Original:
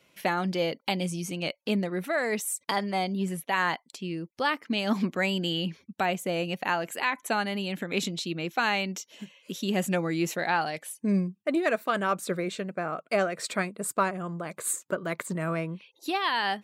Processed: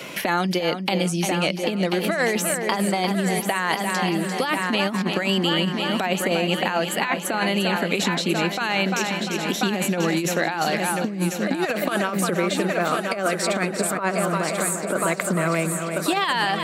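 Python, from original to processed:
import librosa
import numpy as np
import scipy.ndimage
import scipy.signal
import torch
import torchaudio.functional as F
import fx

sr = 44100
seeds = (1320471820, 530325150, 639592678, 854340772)

p1 = x + fx.echo_heads(x, sr, ms=346, heads='first and third', feedback_pct=53, wet_db=-11.0, dry=0)
p2 = fx.over_compress(p1, sr, threshold_db=-28.0, ratio=-0.5)
p3 = scipy.signal.sosfilt(scipy.signal.butter(2, 140.0, 'highpass', fs=sr, output='sos'), p2)
p4 = fx.band_squash(p3, sr, depth_pct=70)
y = p4 * 10.0 ** (7.0 / 20.0)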